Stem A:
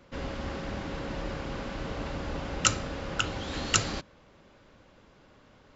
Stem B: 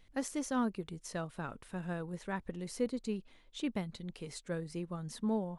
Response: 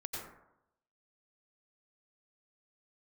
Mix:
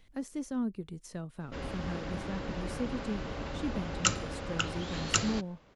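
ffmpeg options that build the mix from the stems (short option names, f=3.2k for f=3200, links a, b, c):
-filter_complex "[0:a]adelay=1400,volume=-3dB[a];[1:a]acrossover=split=380[b][c];[c]acompressor=threshold=-53dB:ratio=2.5[d];[b][d]amix=inputs=2:normalize=0,volume=2dB[e];[a][e]amix=inputs=2:normalize=0"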